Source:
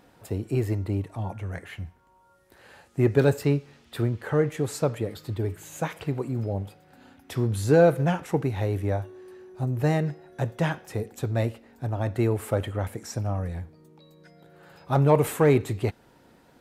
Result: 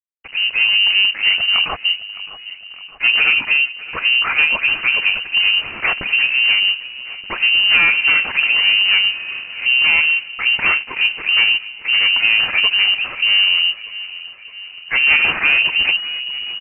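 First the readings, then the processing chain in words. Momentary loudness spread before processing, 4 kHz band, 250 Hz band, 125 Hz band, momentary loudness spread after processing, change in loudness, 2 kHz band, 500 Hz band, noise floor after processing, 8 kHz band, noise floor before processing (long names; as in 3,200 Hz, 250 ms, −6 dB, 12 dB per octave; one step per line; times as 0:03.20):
15 LU, +33.0 dB, below −10 dB, below −20 dB, 15 LU, +13.0 dB, +26.0 dB, −13.5 dB, −37 dBFS, below −35 dB, −59 dBFS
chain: in parallel at +1 dB: downward compressor, threshold −30 dBFS, peak gain reduction 16 dB
on the sum: leveller curve on the samples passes 5
automatic gain control gain up to 4.5 dB
all-pass dispersion lows, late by 70 ms, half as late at 400 Hz
slack as between gear wheels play −13 dBFS
on a send: repeating echo 613 ms, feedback 59%, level −17.5 dB
on the sum: voice inversion scrambler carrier 2,900 Hz
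level −7.5 dB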